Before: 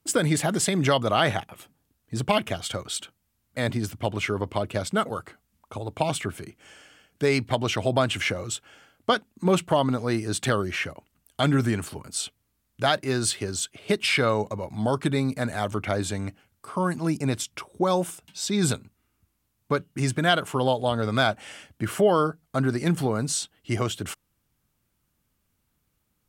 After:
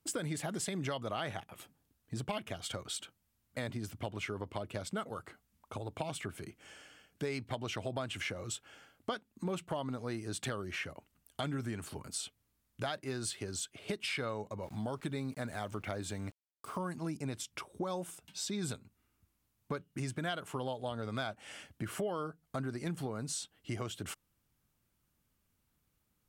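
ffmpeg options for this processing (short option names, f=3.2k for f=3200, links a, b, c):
-filter_complex "[0:a]asettb=1/sr,asplit=3[a][b][c];[a]atrim=end=14.634[d];[b]atrim=start=14.63:end=16.93,asetpts=PTS-STARTPTS,afade=t=in:d=0.004:c=qsin,afade=t=out:st=2.296:d=0.004:c=qsin,aeval=exprs='val(0)*gte(abs(val(0)),0.00473)':c=same[e];[c]atrim=start=16.926[f];[d][e]acrossfade=d=0.004:c1=hsin:c2=qsin[g];[g][f]acrossfade=d=0.004:c1=qsin:c2=hsin,acompressor=threshold=-33dB:ratio=3,volume=-4.5dB"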